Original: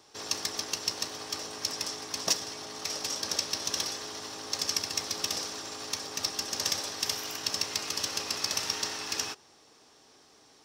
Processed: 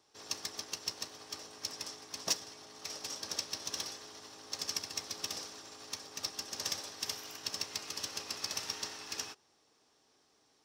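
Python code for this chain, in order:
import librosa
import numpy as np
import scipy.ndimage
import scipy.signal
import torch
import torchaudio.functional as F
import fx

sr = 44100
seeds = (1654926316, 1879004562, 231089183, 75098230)

p1 = 10.0 ** (-28.0 / 20.0) * np.tanh(x / 10.0 ** (-28.0 / 20.0))
p2 = x + F.gain(torch.from_numpy(p1), -7.5).numpy()
p3 = fx.upward_expand(p2, sr, threshold_db=-39.0, expansion=1.5)
y = F.gain(torch.from_numpy(p3), -6.0).numpy()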